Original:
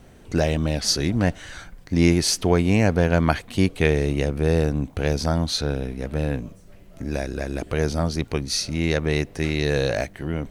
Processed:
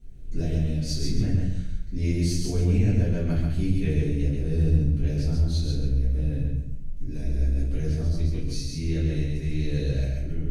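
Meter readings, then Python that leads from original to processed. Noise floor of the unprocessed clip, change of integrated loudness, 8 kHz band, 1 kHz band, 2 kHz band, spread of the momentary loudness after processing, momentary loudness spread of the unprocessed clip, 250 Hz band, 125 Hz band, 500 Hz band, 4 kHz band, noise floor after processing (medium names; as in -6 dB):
-48 dBFS, -3.5 dB, -11.0 dB, under -15 dB, -15.5 dB, 8 LU, 10 LU, -5.5 dB, +0.5 dB, -11.5 dB, -11.5 dB, -32 dBFS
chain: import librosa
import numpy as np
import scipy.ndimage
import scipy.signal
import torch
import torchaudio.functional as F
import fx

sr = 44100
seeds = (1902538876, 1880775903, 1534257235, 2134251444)

y = fx.tone_stack(x, sr, knobs='10-0-1')
y = fx.echo_feedback(y, sr, ms=136, feedback_pct=30, wet_db=-3.0)
y = fx.room_shoebox(y, sr, seeds[0], volume_m3=51.0, walls='mixed', distance_m=1.7)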